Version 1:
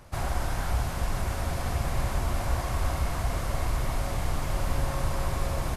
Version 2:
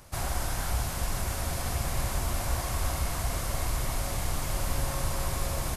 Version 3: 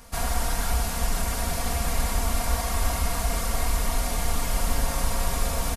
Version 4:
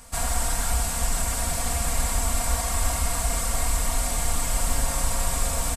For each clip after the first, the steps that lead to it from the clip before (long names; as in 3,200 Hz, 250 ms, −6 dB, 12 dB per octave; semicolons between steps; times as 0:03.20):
high-shelf EQ 4,200 Hz +11 dB; level −2.5 dB
comb filter 4.3 ms, depth 78%; level +2.5 dB
thirty-one-band graphic EQ 200 Hz −4 dB, 400 Hz −6 dB, 8,000 Hz +11 dB